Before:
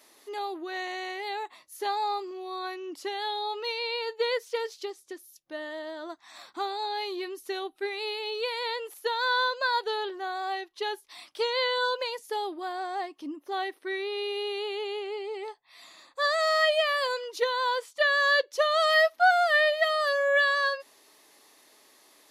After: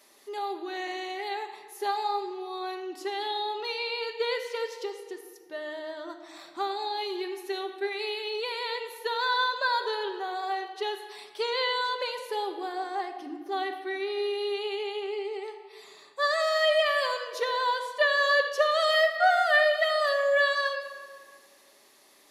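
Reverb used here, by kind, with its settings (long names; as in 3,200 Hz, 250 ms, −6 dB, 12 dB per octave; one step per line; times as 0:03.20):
rectangular room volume 2,400 cubic metres, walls mixed, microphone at 1.2 metres
level −1.5 dB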